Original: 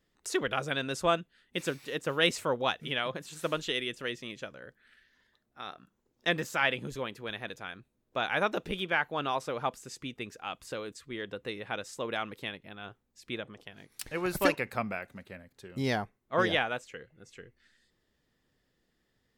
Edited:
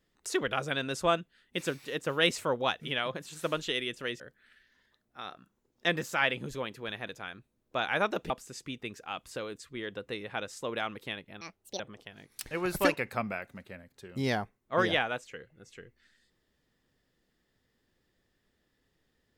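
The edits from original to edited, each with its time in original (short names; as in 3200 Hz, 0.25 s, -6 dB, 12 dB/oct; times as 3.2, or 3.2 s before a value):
4.2–4.61 cut
8.71–9.66 cut
12.77–13.4 speed 163%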